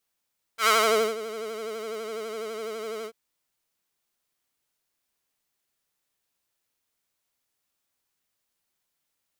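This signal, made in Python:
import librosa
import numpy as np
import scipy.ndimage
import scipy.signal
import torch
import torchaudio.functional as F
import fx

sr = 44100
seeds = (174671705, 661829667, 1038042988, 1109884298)

y = fx.sub_patch_vibrato(sr, seeds[0], note=69, wave='square', wave2='saw', interval_st=0, detune_cents=16, level2_db=-11.5, sub_db=-0.5, noise_db=-30.0, kind='highpass', cutoff_hz=360.0, q=1.4, env_oct=2.0, env_decay_s=0.45, env_sustain_pct=15, attack_ms=88.0, decay_s=0.48, sustain_db=-21.0, release_s=0.07, note_s=2.47, lfo_hz=12.0, vibrato_cents=71)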